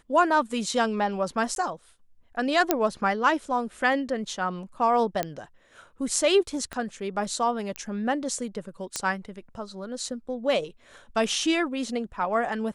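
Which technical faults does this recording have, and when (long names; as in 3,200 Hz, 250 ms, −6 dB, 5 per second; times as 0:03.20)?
0:01.55–0:01.56: drop-out 12 ms
0:02.71: click −5 dBFS
0:05.23: click −11 dBFS
0:06.73: click −19 dBFS
0:07.76: click −16 dBFS
0:08.96: click −12 dBFS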